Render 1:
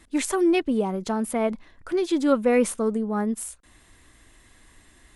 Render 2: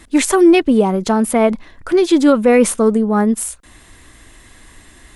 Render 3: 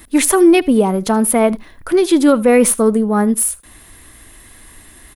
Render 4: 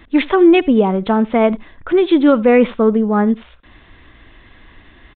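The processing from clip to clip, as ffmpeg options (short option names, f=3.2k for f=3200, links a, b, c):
-af "alimiter=level_in=12dB:limit=-1dB:release=50:level=0:latency=1,volume=-1dB"
-af "aexciter=amount=2.3:drive=9.5:freq=9.8k,aecho=1:1:78:0.075"
-af "aresample=8000,aresample=44100"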